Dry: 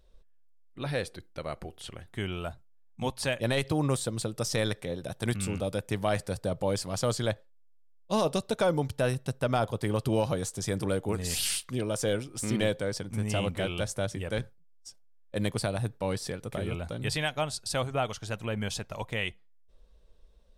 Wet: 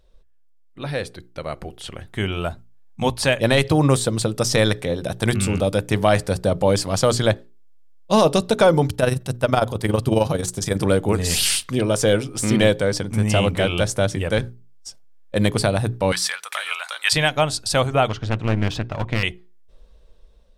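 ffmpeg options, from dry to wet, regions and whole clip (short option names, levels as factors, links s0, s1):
-filter_complex "[0:a]asettb=1/sr,asplit=3[s0][s1][s2];[s0]atrim=end=8.904[s3];[s1]atrim=start=8.9:end=10.79,asetpts=PTS-STARTPTS,afade=t=in:d=0.004:c=qsin,afade=t=out:st=1.886:d=0.004:c=qsin,highshelf=f=9900:g=6,tremolo=f=22:d=0.667[s4];[s2]atrim=start=10.786[s5];[s3][s4]acrossfade=d=0.004:c1=hsin:c2=qsin[s6];[s6][s5]acrossfade=d=0.004:c1=qsin:c2=hsin,asettb=1/sr,asplit=3[s7][s8][s9];[s7]atrim=end=16.124[s10];[s8]atrim=start=16.12:end=17.13,asetpts=PTS-STARTPTS,afade=t=in:d=0.004:c=qsin,afade=t=out:st=1.006:d=0.004:c=qsin,highpass=f=1100:w=0.5412,highpass=f=1100:w=1.3066,acontrast=63[s11];[s9]atrim=start=17.126[s12];[s10][s11]acrossfade=d=0.004:c1=hsin:c2=qsin[s13];[s13][s12]acrossfade=d=0.004:c1=qsin:c2=hsin,asettb=1/sr,asplit=3[s14][s15][s16];[s14]atrim=end=18.084[s17];[s15]atrim=start=18.08:end=19.23,asetpts=PTS-STARTPTS,afade=t=in:d=0.004:c=qsin,afade=t=out:st=1.146:d=0.004:c=qsin,lowpass=3500,equalizer=f=120:w=2.1:g=8,aeval=exprs='clip(val(0),-1,0.0133)':c=same[s18];[s16]atrim=start=19.226[s19];[s17][s18]acrossfade=d=0.004:c1=hsin:c2=qsin[s20];[s20][s19]acrossfade=d=0.004:c1=qsin:c2=hsin,highshelf=f=8500:g=-4,bandreject=f=60:t=h:w=6,bandreject=f=120:t=h:w=6,bandreject=f=180:t=h:w=6,bandreject=f=240:t=h:w=6,bandreject=f=300:t=h:w=6,bandreject=f=360:t=h:w=6,bandreject=f=420:t=h:w=6,dynaudnorm=f=730:g=5:m=2.24,volume=1.68"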